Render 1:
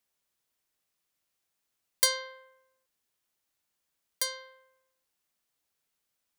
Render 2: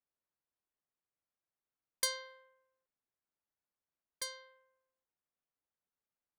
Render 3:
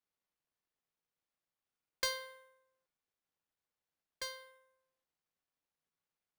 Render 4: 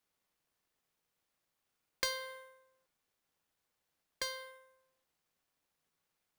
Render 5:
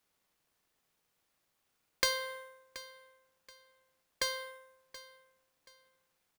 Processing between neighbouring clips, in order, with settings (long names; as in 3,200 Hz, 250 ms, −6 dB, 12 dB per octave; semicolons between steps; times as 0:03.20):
low-pass that shuts in the quiet parts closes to 1,500 Hz, open at −31 dBFS; level −8.5 dB
running median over 5 samples; tuned comb filter 160 Hz, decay 0.76 s, harmonics odd, mix 70%; level +12 dB
downward compressor 2 to 1, threshold −46 dBFS, peak gain reduction 9 dB; level +8 dB
repeating echo 728 ms, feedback 29%, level −17 dB; level +5 dB